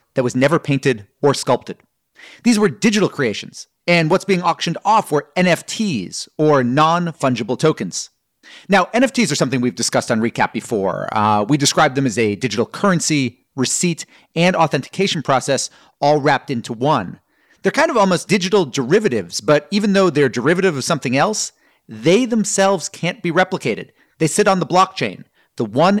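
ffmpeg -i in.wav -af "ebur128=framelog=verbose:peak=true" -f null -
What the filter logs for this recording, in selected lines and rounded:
Integrated loudness:
  I:         -17.1 LUFS
  Threshold: -27.4 LUFS
Loudness range:
  LRA:         1.9 LU
  Threshold: -37.4 LUFS
  LRA low:   -18.2 LUFS
  LRA high:  -16.3 LUFS
True peak:
  Peak:       -2.1 dBFS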